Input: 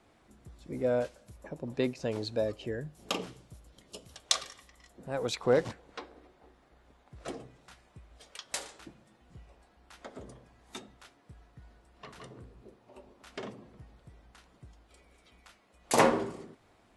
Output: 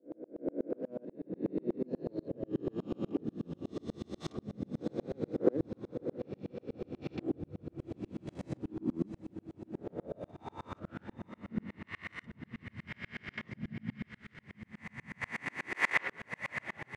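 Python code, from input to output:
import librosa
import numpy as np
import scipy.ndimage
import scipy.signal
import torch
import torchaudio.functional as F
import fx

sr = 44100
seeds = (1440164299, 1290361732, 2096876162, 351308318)

p1 = fx.spec_swells(x, sr, rise_s=2.48)
p2 = scipy.signal.sosfilt(scipy.signal.butter(2, 140.0, 'highpass', fs=sr, output='sos'), p1)
p3 = (np.mod(10.0 ** (21.0 / 20.0) * p2 + 1.0, 2.0) - 1.0) / 10.0 ** (21.0 / 20.0)
p4 = p2 + (p3 * librosa.db_to_amplitude(-10.0))
p5 = fx.level_steps(p4, sr, step_db=11)
p6 = fx.filter_sweep_bandpass(p5, sr, from_hz=310.0, to_hz=2000.0, start_s=9.65, end_s=11.24, q=5.1)
p7 = fx.echo_diffused(p6, sr, ms=649, feedback_pct=49, wet_db=-9)
p8 = fx.rider(p7, sr, range_db=4, speed_s=2.0)
p9 = fx.echo_pitch(p8, sr, ms=718, semitones=-7, count=3, db_per_echo=-6.0)
p10 = fx.tremolo_decay(p9, sr, direction='swelling', hz=8.2, depth_db=37)
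y = p10 * librosa.db_to_amplitude(13.5)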